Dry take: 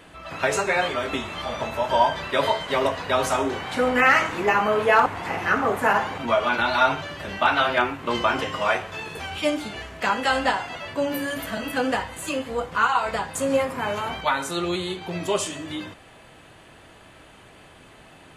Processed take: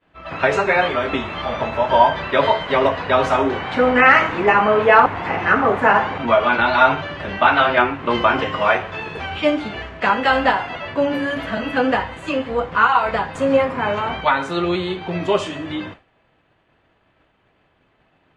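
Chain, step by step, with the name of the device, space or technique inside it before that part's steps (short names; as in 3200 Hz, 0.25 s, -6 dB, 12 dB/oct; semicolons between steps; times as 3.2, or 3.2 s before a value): hearing-loss simulation (LPF 3000 Hz 12 dB/oct; expander -37 dBFS); gain +6 dB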